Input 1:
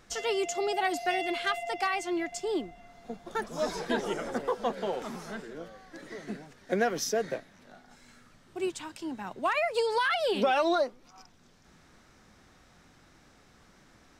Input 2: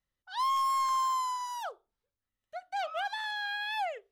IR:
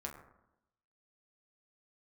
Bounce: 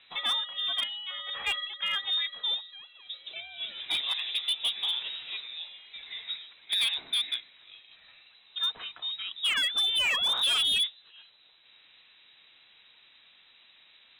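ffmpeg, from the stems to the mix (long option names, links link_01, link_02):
-filter_complex "[0:a]lowshelf=frequency=110:gain=-5,volume=2dB[link_01];[1:a]dynaudnorm=framelen=170:gausssize=7:maxgain=3.5dB,aeval=exprs='val(0)*pow(10,-22*if(lt(mod(1.2*n/s,1),2*abs(1.2)/1000),1-mod(1.2*n/s,1)/(2*abs(1.2)/1000),(mod(1.2*n/s,1)-2*abs(1.2)/1000)/(1-2*abs(1.2)/1000))/20)':channel_layout=same,volume=-10.5dB,asplit=2[link_02][link_03];[link_03]apad=whole_len=625921[link_04];[link_01][link_04]sidechaincompress=threshold=-55dB:ratio=6:attack=26:release=344[link_05];[link_05][link_02]amix=inputs=2:normalize=0,lowpass=frequency=3400:width_type=q:width=0.5098,lowpass=frequency=3400:width_type=q:width=0.6013,lowpass=frequency=3400:width_type=q:width=0.9,lowpass=frequency=3400:width_type=q:width=2.563,afreqshift=-4000,asoftclip=type=hard:threshold=-23dB"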